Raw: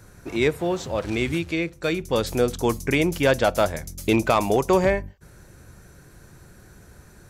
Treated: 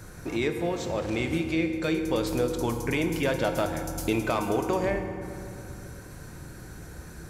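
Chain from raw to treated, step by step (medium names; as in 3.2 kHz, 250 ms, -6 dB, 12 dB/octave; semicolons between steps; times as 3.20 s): compression 2:1, threshold -38 dBFS, peak gain reduction 13 dB; on a send: reverberation RT60 2.8 s, pre-delay 3 ms, DRR 5 dB; on the sum: trim +4 dB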